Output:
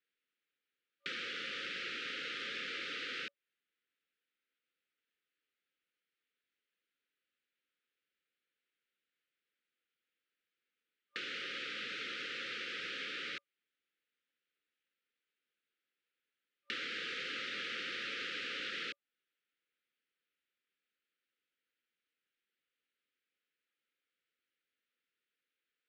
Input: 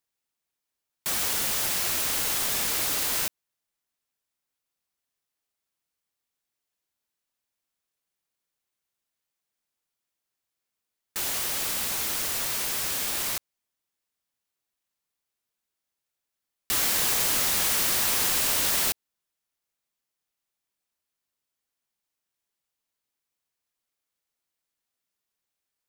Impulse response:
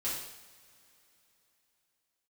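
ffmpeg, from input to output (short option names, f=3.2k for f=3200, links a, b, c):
-filter_complex "[0:a]afftfilt=real='re*(1-between(b*sr/4096,560,1200))':imag='im*(1-between(b*sr/4096,560,1200))':win_size=4096:overlap=0.75,highpass=330,equalizer=f=380:t=q:w=4:g=-3,equalizer=f=620:t=q:w=4:g=-7,equalizer=f=1.1k:t=q:w=4:g=-7,lowpass=f=3.3k:w=0.5412,lowpass=f=3.3k:w=1.3066,acrossover=split=670|2000[a][b][c];[a]acompressor=threshold=-57dB:ratio=4[d];[b]acompressor=threshold=-52dB:ratio=4[e];[c]acompressor=threshold=-47dB:ratio=4[f];[d][e][f]amix=inputs=3:normalize=0,volume=3.5dB"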